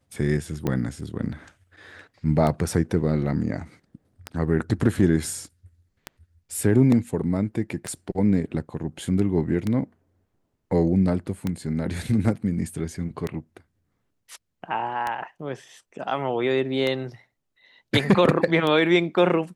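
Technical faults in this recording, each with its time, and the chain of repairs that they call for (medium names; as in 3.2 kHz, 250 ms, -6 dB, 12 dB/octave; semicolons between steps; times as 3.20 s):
tick 33 1/3 rpm -13 dBFS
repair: de-click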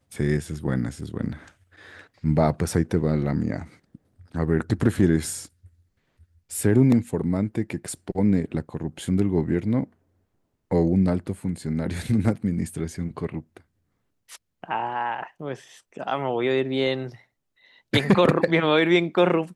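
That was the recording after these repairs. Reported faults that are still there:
nothing left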